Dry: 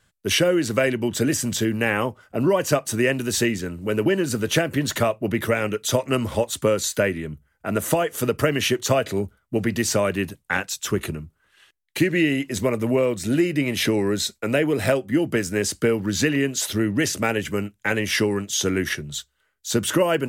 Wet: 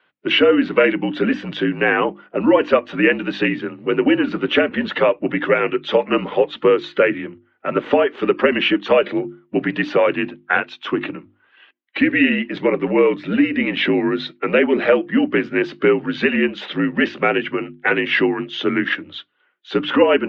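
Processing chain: coarse spectral quantiser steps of 15 dB; mistuned SSB -54 Hz 290–3300 Hz; hum notches 50/100/150/200/250/300/350 Hz; trim +7 dB

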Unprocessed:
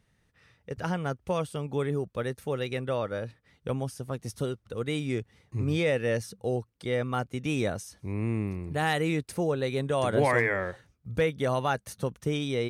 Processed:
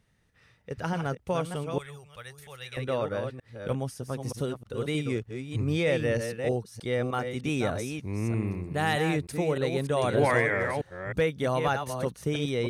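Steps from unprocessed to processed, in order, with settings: chunks repeated in reverse 309 ms, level -6.5 dB; 1.78–2.77 s: amplifier tone stack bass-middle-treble 10-0-10

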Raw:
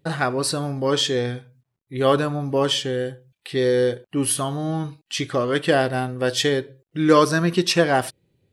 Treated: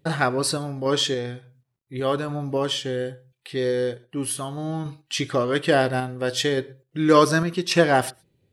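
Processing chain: random-step tremolo; reverberation, pre-delay 109 ms, DRR 27 dB; trim +1 dB

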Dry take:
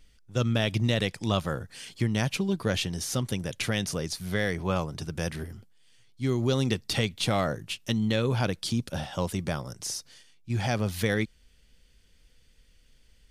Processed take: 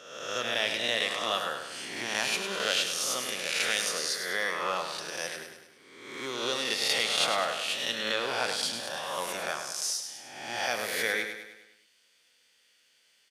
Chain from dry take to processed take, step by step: reverse spectral sustain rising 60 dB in 1.10 s; Bessel high-pass 810 Hz, order 2; treble shelf 10 kHz -3.5 dB; feedback delay 102 ms, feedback 51%, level -7.5 dB

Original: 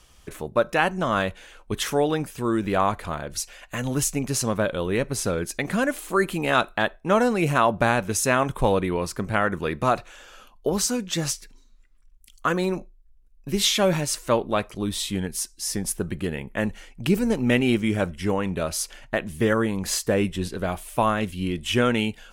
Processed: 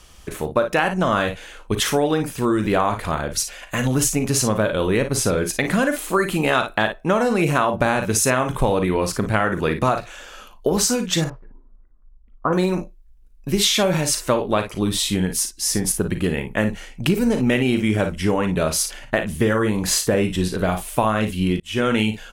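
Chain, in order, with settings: 11.24–12.53 s: low-pass 1.1 kHz 24 dB/octave; early reflections 38 ms -11.5 dB, 55 ms -10.5 dB; 21.60–22.01 s: fade in; compression, threshold -21 dBFS, peak gain reduction 8 dB; trim +6.5 dB

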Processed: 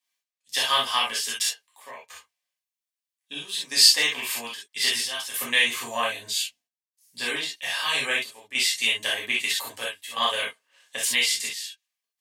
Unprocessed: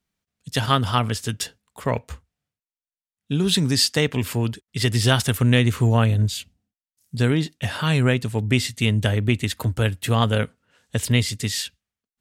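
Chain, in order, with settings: high-pass 1.1 kHz 12 dB/octave; trance gate "x..xxxxxxx" 93 bpm -12 dB; Butterworth band-stop 1.4 kHz, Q 4.3; gated-style reverb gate 90 ms flat, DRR -5.5 dB; trim -2 dB

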